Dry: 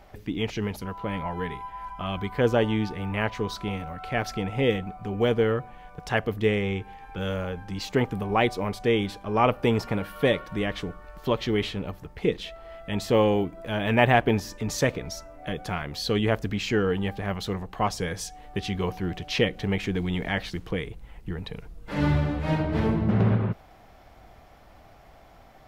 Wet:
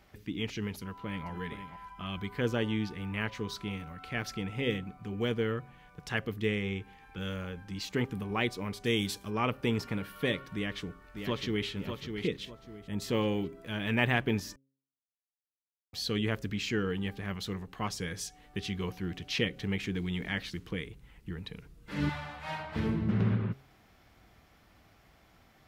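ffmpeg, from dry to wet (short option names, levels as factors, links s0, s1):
-filter_complex "[0:a]asplit=2[s0][s1];[s1]afade=t=in:st=0.79:d=0.01,afade=t=out:st=1.29:d=0.01,aecho=0:1:470|940:0.334965|0.0502448[s2];[s0][s2]amix=inputs=2:normalize=0,asplit=3[s3][s4][s5];[s3]afade=t=out:st=8.84:d=0.02[s6];[s4]bass=f=250:g=2,treble=f=4000:g=14,afade=t=in:st=8.84:d=0.02,afade=t=out:st=9.29:d=0.02[s7];[s5]afade=t=in:st=9.29:d=0.02[s8];[s6][s7][s8]amix=inputs=3:normalize=0,asplit=2[s9][s10];[s10]afade=t=in:st=10.54:d=0.01,afade=t=out:st=11.67:d=0.01,aecho=0:1:600|1200|1800|2400:0.473151|0.165603|0.057961|0.0202864[s11];[s9][s11]amix=inputs=2:normalize=0,asettb=1/sr,asplit=3[s12][s13][s14];[s12]atrim=end=12.454[s15];[s13]atrim=start=12.45:end=13.02,asetpts=PTS-STARTPTS,afade=t=in:d=0.004:c=qsin,afade=t=out:st=0.566:d=0.004:c=qsin,equalizer=f=2800:t=o:w=1.7:g=-11[s16];[s14]atrim=start=13.016[s17];[s15][s16]acrossfade=d=0.004:c1=hsin:c2=qsin[s18];[s18][s17]acrossfade=d=0.004:c1=qsin:c2=hsin,asettb=1/sr,asplit=3[s19][s20][s21];[s19]atrim=end=22.094[s22];[s20]atrim=start=22.09:end=22.76,asetpts=PTS-STARTPTS,afade=t=in:d=0.004:c=qsin,afade=t=out:st=0.666:d=0.004:c=qsin,lowshelf=f=520:t=q:w=3:g=-13[s23];[s21]atrim=start=22.756[s24];[s22][s23]acrossfade=d=0.004:c1=hsin:c2=qsin[s25];[s25][s24]acrossfade=d=0.004:c1=qsin:c2=hsin,asplit=3[s26][s27][s28];[s26]atrim=end=14.56,asetpts=PTS-STARTPTS,afade=t=out:st=14.556:d=0.004:c=hsin[s29];[s27]atrim=start=14.56:end=15.93,asetpts=PTS-STARTPTS,volume=0[s30];[s28]atrim=start=15.93,asetpts=PTS-STARTPTS,afade=t=in:d=0.004:c=hsin[s31];[s29][s30][s31]concat=n=3:v=0:a=1,highpass=f=99:p=1,equalizer=f=690:w=1.1:g=-11,bandreject=f=135:t=h:w=4,bandreject=f=270:t=h:w=4,bandreject=f=405:t=h:w=4,bandreject=f=540:t=h:w=4,volume=0.668"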